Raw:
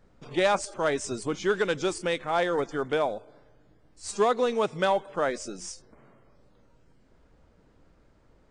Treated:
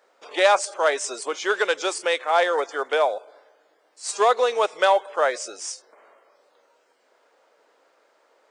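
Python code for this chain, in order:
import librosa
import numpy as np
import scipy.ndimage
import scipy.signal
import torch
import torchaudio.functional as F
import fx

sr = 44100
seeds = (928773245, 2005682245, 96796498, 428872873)

y = scipy.signal.sosfilt(scipy.signal.butter(4, 480.0, 'highpass', fs=sr, output='sos'), x)
y = y * librosa.db_to_amplitude(7.0)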